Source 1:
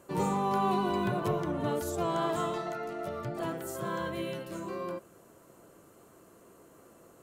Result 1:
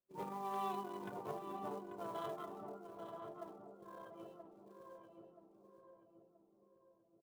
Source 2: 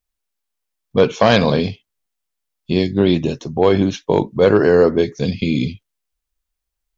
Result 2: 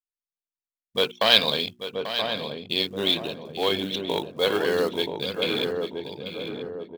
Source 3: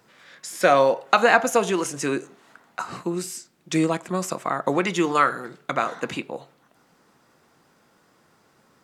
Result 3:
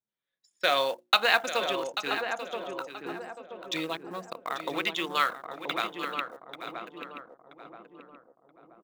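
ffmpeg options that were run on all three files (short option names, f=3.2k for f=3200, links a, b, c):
-filter_complex "[0:a]anlmdn=251,lowpass=f=3.6k:t=q:w=3.5,aemphasis=mode=production:type=riaa,bandreject=f=60:t=h:w=6,bandreject=f=120:t=h:w=6,bandreject=f=180:t=h:w=6,bandreject=f=240:t=h:w=6,bandreject=f=300:t=h:w=6,bandreject=f=360:t=h:w=6,asplit=2[a][b];[b]aecho=0:1:839:0.282[c];[a][c]amix=inputs=2:normalize=0,acrusher=bits=5:mode=log:mix=0:aa=0.000001,asplit=2[d][e];[e]adelay=978,lowpass=f=860:p=1,volume=-4dB,asplit=2[f][g];[g]adelay=978,lowpass=f=860:p=1,volume=0.52,asplit=2[h][i];[i]adelay=978,lowpass=f=860:p=1,volume=0.52,asplit=2[j][k];[k]adelay=978,lowpass=f=860:p=1,volume=0.52,asplit=2[l][m];[m]adelay=978,lowpass=f=860:p=1,volume=0.52,asplit=2[n][o];[o]adelay=978,lowpass=f=860:p=1,volume=0.52,asplit=2[p][q];[q]adelay=978,lowpass=f=860:p=1,volume=0.52[r];[f][h][j][l][n][p][r]amix=inputs=7:normalize=0[s];[d][s]amix=inputs=2:normalize=0,volume=-9dB"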